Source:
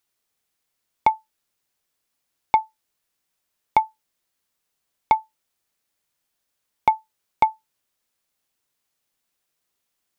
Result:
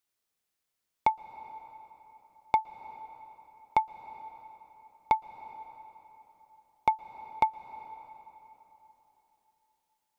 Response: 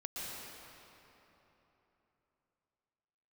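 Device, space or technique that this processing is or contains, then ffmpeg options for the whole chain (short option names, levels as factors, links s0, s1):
ducked reverb: -filter_complex "[0:a]asplit=3[s0][s1][s2];[1:a]atrim=start_sample=2205[s3];[s1][s3]afir=irnorm=-1:irlink=0[s4];[s2]apad=whole_len=448940[s5];[s4][s5]sidechaincompress=threshold=0.1:ratio=8:attack=9.5:release=515,volume=0.282[s6];[s0][s6]amix=inputs=2:normalize=0,volume=0.422"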